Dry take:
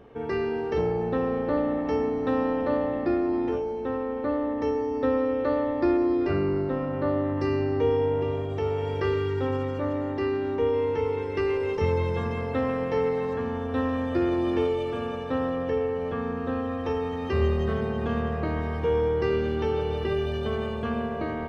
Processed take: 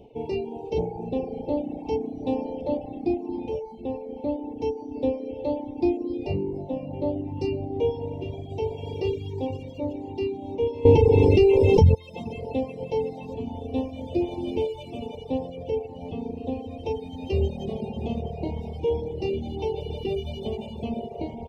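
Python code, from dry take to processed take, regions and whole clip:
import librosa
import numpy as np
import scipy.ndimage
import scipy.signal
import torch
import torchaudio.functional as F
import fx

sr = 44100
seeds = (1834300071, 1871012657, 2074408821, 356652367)

y = fx.chain(x, sr, fx.low_shelf(hz=280.0, db=10.5),
    fx.env_flatten(amount_pct=100), at=(10.85, 11.95))
y = fx.dereverb_blind(y, sr, rt60_s=0.73)
y = scipy.signal.sosfilt(scipy.signal.cheby1(3, 1.0, [860.0, 2500.0], 'bandstop', fs=sr, output='sos'), y)
y = fx.dereverb_blind(y, sr, rt60_s=0.85)
y = F.gain(torch.from_numpy(y), 2.5).numpy()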